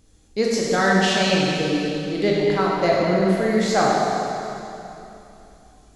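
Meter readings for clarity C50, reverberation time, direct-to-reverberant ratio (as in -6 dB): -2.0 dB, 3.0 s, -4.5 dB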